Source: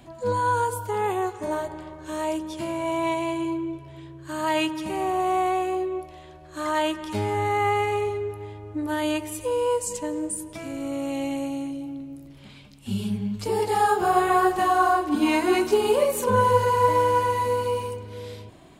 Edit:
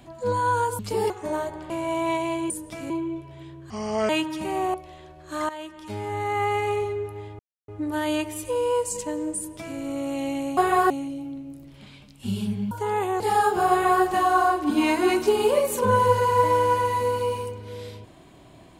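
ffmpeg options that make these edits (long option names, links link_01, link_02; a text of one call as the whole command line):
ffmpeg -i in.wav -filter_complex "[0:a]asplit=15[link_01][link_02][link_03][link_04][link_05][link_06][link_07][link_08][link_09][link_10][link_11][link_12][link_13][link_14][link_15];[link_01]atrim=end=0.792[link_16];[link_02]atrim=start=13.338:end=13.652[link_17];[link_03]atrim=start=1.278:end=1.882[link_18];[link_04]atrim=start=2.668:end=3.472[link_19];[link_05]atrim=start=10.328:end=10.732[link_20];[link_06]atrim=start=3.468:end=4.274[link_21];[link_07]atrim=start=4.27:end=4.54,asetpts=PTS-STARTPTS,asetrate=30429,aresample=44100[link_22];[link_08]atrim=start=4.536:end=5.192[link_23];[link_09]atrim=start=5.988:end=6.74,asetpts=PTS-STARTPTS,afade=type=out:start_time=0.748:duration=0.004:curve=hsin:silence=0.16788[link_24];[link_10]atrim=start=6.74:end=8.64,asetpts=PTS-STARTPTS,afade=type=in:duration=1.24:silence=0.16788,afade=type=out:start_time=1.896:duration=0.004:curve=hsin,apad=pad_dur=0.29[link_25];[link_11]atrim=start=8.64:end=11.532,asetpts=PTS-STARTPTS,afade=type=in:duration=0.004:curve=hsin[link_26];[link_12]atrim=start=14.148:end=14.482[link_27];[link_13]atrim=start=11.528:end=13.342[link_28];[link_14]atrim=start=0.788:end=1.282[link_29];[link_15]atrim=start=13.648[link_30];[link_16][link_17]acrossfade=duration=0.004:curve1=hsin:curve2=hsin[link_31];[link_31][link_18]acrossfade=duration=0.004:curve1=hsin:curve2=hsin[link_32];[link_32][link_19]acrossfade=duration=0.004:curve1=hsin:curve2=hsin[link_33];[link_33][link_20]acrossfade=duration=0.004:curve1=hsin:curve2=hsin[link_34];[link_34][link_21]acrossfade=duration=0.004:curve1=hsin:curve2=hsin[link_35];[link_35][link_22]acrossfade=duration=0.004:curve1=hsin:curve2=hsin[link_36];[link_36][link_23]acrossfade=duration=0.004:curve1=hsin:curve2=hsin[link_37];[link_24][link_25][link_26]concat=n=3:v=0:a=1[link_38];[link_37][link_38]acrossfade=duration=0.004:curve1=hsin:curve2=hsin[link_39];[link_39][link_27]acrossfade=duration=0.004:curve1=hsin:curve2=hsin[link_40];[link_40][link_28]acrossfade=duration=0.004:curve1=hsin:curve2=hsin[link_41];[link_41][link_29]acrossfade=duration=0.004:curve1=hsin:curve2=hsin[link_42];[link_42][link_30]acrossfade=duration=0.004:curve1=hsin:curve2=hsin" out.wav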